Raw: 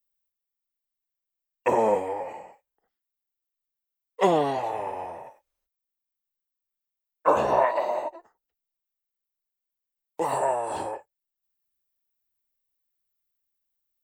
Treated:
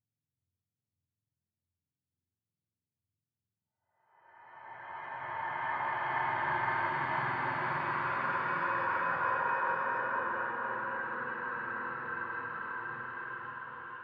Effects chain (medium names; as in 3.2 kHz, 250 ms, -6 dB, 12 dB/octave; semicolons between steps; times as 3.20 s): spectrum inverted on a logarithmic axis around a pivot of 980 Hz; Gaussian low-pass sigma 2.7 samples; Paulstretch 9.2×, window 0.50 s, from 6.60 s; on a send: reverberation RT60 3.2 s, pre-delay 10 ms, DRR 12 dB; on the sum: trim -6 dB